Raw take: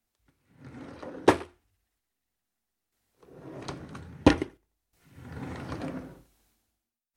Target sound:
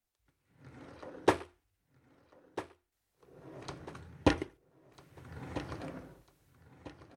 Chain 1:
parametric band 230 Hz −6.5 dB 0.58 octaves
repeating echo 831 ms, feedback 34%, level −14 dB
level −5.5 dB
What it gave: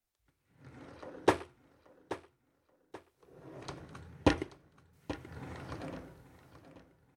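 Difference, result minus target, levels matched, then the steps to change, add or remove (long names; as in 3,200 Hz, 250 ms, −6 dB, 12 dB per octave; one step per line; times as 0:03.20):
echo 466 ms early
change: repeating echo 1,297 ms, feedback 34%, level −14 dB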